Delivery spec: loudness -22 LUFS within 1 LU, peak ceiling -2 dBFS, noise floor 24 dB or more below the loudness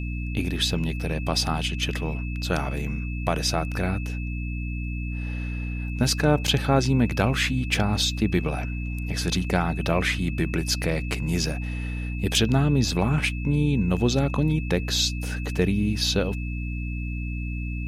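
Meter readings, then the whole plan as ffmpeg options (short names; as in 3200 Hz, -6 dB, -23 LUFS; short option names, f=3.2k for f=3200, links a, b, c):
hum 60 Hz; harmonics up to 300 Hz; hum level -27 dBFS; steady tone 2600 Hz; tone level -39 dBFS; loudness -25.0 LUFS; peak -8.5 dBFS; loudness target -22.0 LUFS
-> -af "bandreject=f=60:t=h:w=4,bandreject=f=120:t=h:w=4,bandreject=f=180:t=h:w=4,bandreject=f=240:t=h:w=4,bandreject=f=300:t=h:w=4"
-af "bandreject=f=2.6k:w=30"
-af "volume=3dB"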